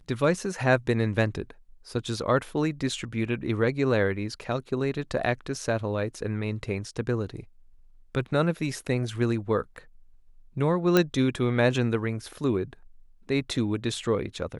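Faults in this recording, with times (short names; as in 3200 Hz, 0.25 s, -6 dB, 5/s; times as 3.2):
10.97 pop -7 dBFS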